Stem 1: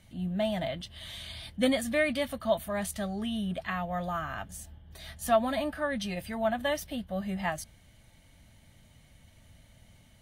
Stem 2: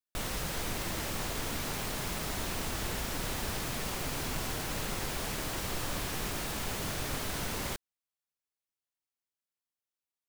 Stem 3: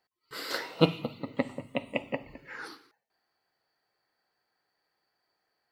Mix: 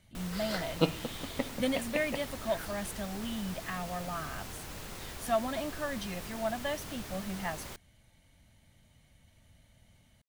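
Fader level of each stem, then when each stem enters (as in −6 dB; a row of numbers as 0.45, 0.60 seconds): −5.0, −8.5, −4.5 decibels; 0.00, 0.00, 0.00 seconds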